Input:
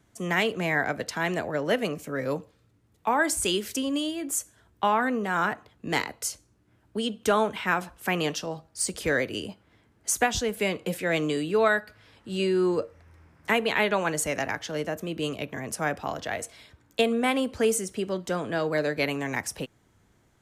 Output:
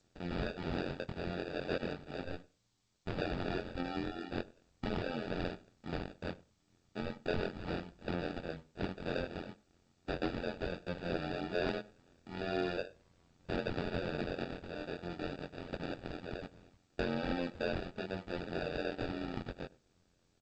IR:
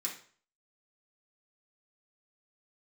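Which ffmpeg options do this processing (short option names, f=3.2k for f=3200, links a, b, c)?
-filter_complex "[0:a]highshelf=f=2.6k:g=3.5,acrusher=samples=42:mix=1:aa=0.000001,asettb=1/sr,asplit=3[a][b][c];[a]atrim=end=2.234[d];[b]atrim=start=2.23:end=3.18,asetpts=PTS-STARTPTS,afade=t=in:d=0.004:c=qsin,afade=t=out:st=0.946:d=0.004:c=qsin,aeval=exprs='0.224*(cos(1*acos(clip(val(0)/0.224,-1,1)))-cos(1*PI/2))+0.0447*(cos(3*acos(clip(val(0)/0.224,-1,1)))-cos(3*PI/2))+0.0316*(cos(6*acos(clip(val(0)/0.224,-1,1)))-cos(6*PI/2))+0.00126*(cos(8*acos(clip(val(0)/0.224,-1,1)))-cos(8*PI/2))':c=same[e];[c]atrim=start=3.176[f];[d][e]acrossfade=d=0.004:c1=hsin:c2=qsin[g];[g][f]acrossfade=d=0.004:c1=qsin:c2=hsin,flanger=delay=17:depth=6.4:speed=0.37,asoftclip=type=tanh:threshold=-22dB,tremolo=f=88:d=0.919,asplit=2[h][i];[i]adelay=99,lowpass=f=1.2k:p=1,volume=-21dB,asplit=2[j][k];[k]adelay=99,lowpass=f=1.2k:p=1,volume=0.16[l];[h][j][l]amix=inputs=3:normalize=0,aresample=11025,aresample=44100,volume=-3dB" -ar 16000 -c:a g722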